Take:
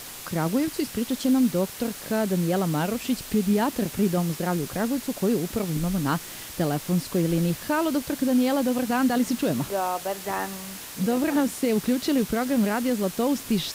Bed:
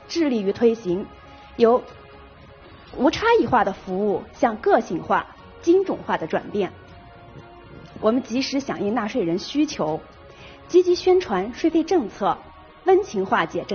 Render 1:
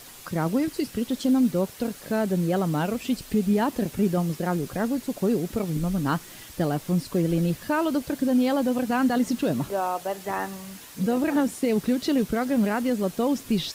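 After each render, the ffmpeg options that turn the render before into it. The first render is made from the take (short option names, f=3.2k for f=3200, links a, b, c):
-af "afftdn=nr=7:nf=-39"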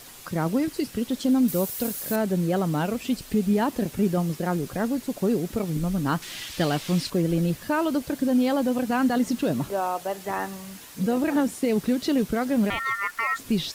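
-filter_complex "[0:a]asettb=1/sr,asplit=3[a][b][c];[a]atrim=end=1.484[d];[b]atrim=start=1.48:end=2.16,asetpts=PTS-STARTPTS,afade=t=in:d=0.004:c=qsin,afade=t=out:st=0.676:d=0.004:c=qsin,aemphasis=mode=production:type=50fm[e];[c]atrim=start=2.156[f];[d][e]acrossfade=d=0.004:c1=hsin:c2=qsin[g];[g][f]acrossfade=d=0.004:c1=qsin:c2=hsin,asettb=1/sr,asplit=3[h][i][j];[h]atrim=end=6.224[k];[i]atrim=start=6.22:end=7.1,asetpts=PTS-STARTPTS,afade=t=in:d=0.004:c=qsin,afade=t=out:st=0.876:d=0.004:c=qsin,equalizer=f=3.3k:w=0.56:g=12[l];[j]atrim=start=7.096[m];[k][l]acrossfade=d=0.004:c1=hsin:c2=qsin[n];[n][m]acrossfade=d=0.004:c1=qsin:c2=hsin,asettb=1/sr,asplit=3[o][p][q];[o]atrim=end=12.704[r];[p]atrim=start=12.7:end=13.39,asetpts=PTS-STARTPTS,afade=t=in:d=0.004:c=qsin,afade=t=out:st=0.686:d=0.004:c=qsin,aeval=exprs='val(0)*sin(2*PI*1600*n/s)':c=same[s];[q]atrim=start=13.386[t];[r][s]acrossfade=d=0.004:c1=hsin:c2=qsin[u];[u][t]acrossfade=d=0.004:c1=qsin:c2=hsin"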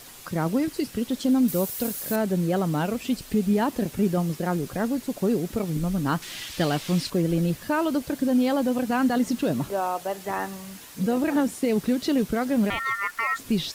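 -af anull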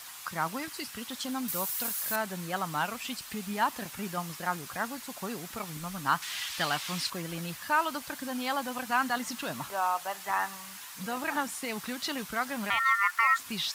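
-af "highpass=49,lowshelf=f=670:t=q:w=1.5:g=-13.5"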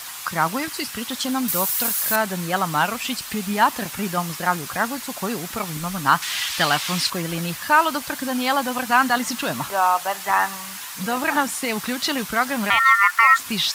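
-af "volume=10.5dB,alimiter=limit=-3dB:level=0:latency=1"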